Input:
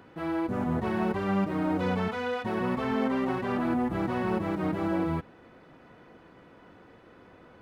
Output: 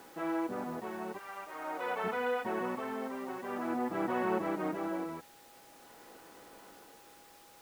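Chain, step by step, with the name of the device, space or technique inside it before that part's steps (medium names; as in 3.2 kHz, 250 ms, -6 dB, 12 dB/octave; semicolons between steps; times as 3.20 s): 1.17–2.03 s: high-pass 1.1 kHz -> 510 Hz 12 dB/octave; shortwave radio (band-pass 310–2900 Hz; tremolo 0.47 Hz, depth 65%; whistle 820 Hz -60 dBFS; white noise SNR 19 dB); treble shelf 4.5 kHz -6 dB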